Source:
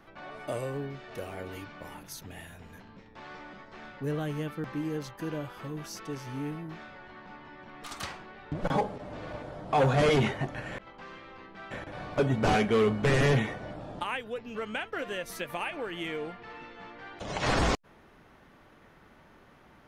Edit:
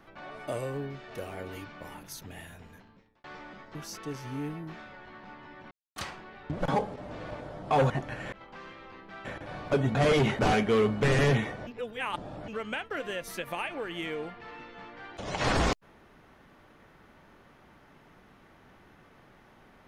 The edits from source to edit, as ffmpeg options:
-filter_complex "[0:a]asplit=10[a][b][c][d][e][f][g][h][i][j];[a]atrim=end=3.24,asetpts=PTS-STARTPTS,afade=t=out:st=2.54:d=0.7[k];[b]atrim=start=3.24:end=3.752,asetpts=PTS-STARTPTS,afade=t=in:d=0.004:c=hsin[l];[c]atrim=start=5.768:end=7.73,asetpts=PTS-STARTPTS,afade=t=out:st=1.958:d=0.004:c=hsin[m];[d]atrim=start=7.73:end=7.98,asetpts=PTS-STARTPTS,volume=0[n];[e]atrim=start=7.98:end=9.922,asetpts=PTS-STARTPTS,afade=t=in:d=0.004:c=hsin[o];[f]atrim=start=10.358:end=12.412[p];[g]atrim=start=9.918:end=10.362[q];[h]atrim=start=12.408:end=13.692[r];[i]atrim=start=13.688:end=14.502,asetpts=PTS-STARTPTS,areverse[s];[j]atrim=start=14.498[t];[k][l]concat=n=2:v=0:a=1[u];[m][n][o]concat=n=3:v=0:a=1[v];[u][v]acrossfade=d=0.004:c1=hsin:c2=hsin[w];[w][p]acrossfade=d=0.004:c1=hsin:c2=hsin[x];[x][q]acrossfade=d=0.004:c1=hsin:c2=hsin[y];[y][r]acrossfade=d=0.004:c1=hsin:c2=hsin[z];[z][s]acrossfade=d=0.004:c1=hsin:c2=hsin[aa];[aa][t]acrossfade=d=0.004:c1=hsin:c2=hsin"

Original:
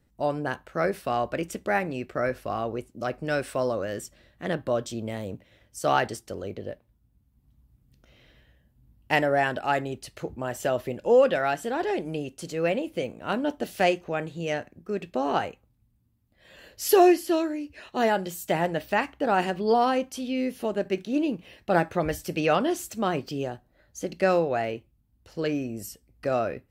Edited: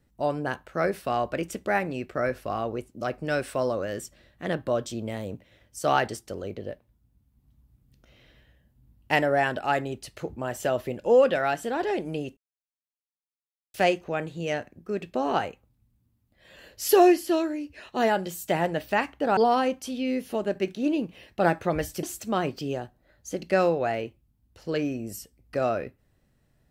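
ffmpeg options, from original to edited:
-filter_complex "[0:a]asplit=5[a][b][c][d][e];[a]atrim=end=12.37,asetpts=PTS-STARTPTS,afade=t=out:st=12.366:d=0.004:c=hsin[f];[b]atrim=start=12.37:end=13.74,asetpts=PTS-STARTPTS,volume=0[g];[c]atrim=start=13.74:end=19.372,asetpts=PTS-STARTPTS,afade=t=in:d=0.004:c=hsin[h];[d]atrim=start=19.668:end=22.332[i];[e]atrim=start=22.728[j];[f][g][h]concat=n=3:v=0:a=1[k];[k][i]acrossfade=d=0.004:c1=hsin:c2=hsin[l];[l][j]acrossfade=d=0.004:c1=hsin:c2=hsin"

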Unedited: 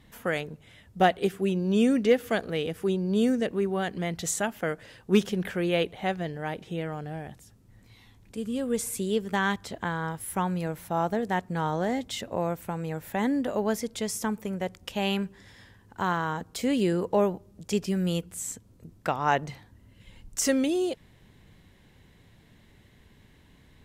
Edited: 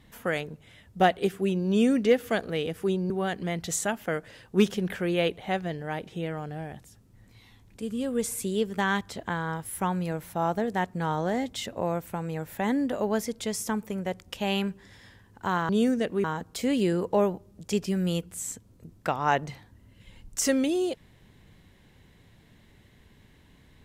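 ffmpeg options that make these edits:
-filter_complex "[0:a]asplit=4[a][b][c][d];[a]atrim=end=3.102[e];[b]atrim=start=3.648:end=16.242[f];[c]atrim=start=3.098:end=3.652[g];[d]atrim=start=16.238[h];[e][f]acrossfade=d=0.004:c1=hsin:c2=hsin[i];[i][g]acrossfade=d=0.004:c1=hsin:c2=hsin[j];[j][h]acrossfade=d=0.004:c1=hsin:c2=hsin"

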